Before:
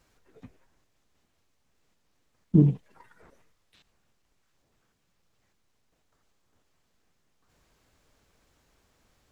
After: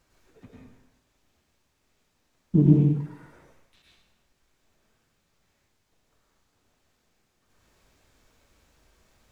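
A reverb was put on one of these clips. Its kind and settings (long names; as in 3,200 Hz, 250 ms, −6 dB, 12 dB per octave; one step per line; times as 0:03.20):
dense smooth reverb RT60 0.81 s, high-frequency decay 1×, pre-delay 90 ms, DRR −4 dB
level −1.5 dB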